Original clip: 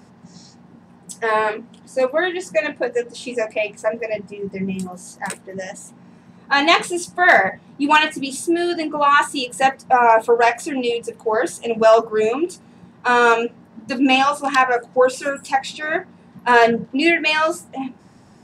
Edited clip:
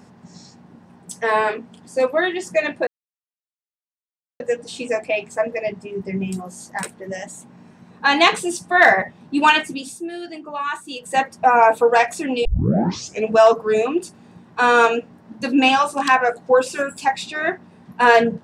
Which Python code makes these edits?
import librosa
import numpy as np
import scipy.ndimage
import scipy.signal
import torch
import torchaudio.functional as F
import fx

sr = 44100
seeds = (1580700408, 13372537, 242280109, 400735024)

y = fx.edit(x, sr, fx.insert_silence(at_s=2.87, length_s=1.53),
    fx.fade_down_up(start_s=8.03, length_s=1.77, db=-11.0, fade_s=0.46),
    fx.tape_start(start_s=10.92, length_s=0.83), tone=tone)